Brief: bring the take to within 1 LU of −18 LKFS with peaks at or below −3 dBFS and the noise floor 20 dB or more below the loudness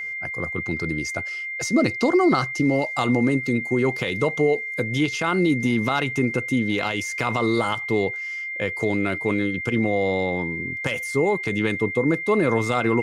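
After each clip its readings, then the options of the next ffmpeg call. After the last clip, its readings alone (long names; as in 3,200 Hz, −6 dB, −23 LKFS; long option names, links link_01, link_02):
interfering tone 2,100 Hz; level of the tone −28 dBFS; integrated loudness −22.5 LKFS; sample peak −7.5 dBFS; target loudness −18.0 LKFS
→ -af "bandreject=frequency=2100:width=30"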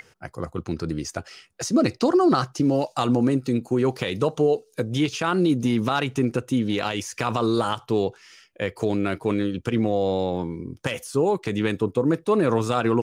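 interfering tone none found; integrated loudness −24.0 LKFS; sample peak −7.0 dBFS; target loudness −18.0 LKFS
→ -af "volume=6dB,alimiter=limit=-3dB:level=0:latency=1"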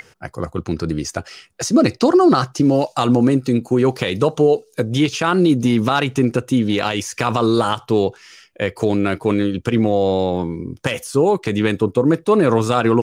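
integrated loudness −18.0 LKFS; sample peak −3.0 dBFS; background noise floor −54 dBFS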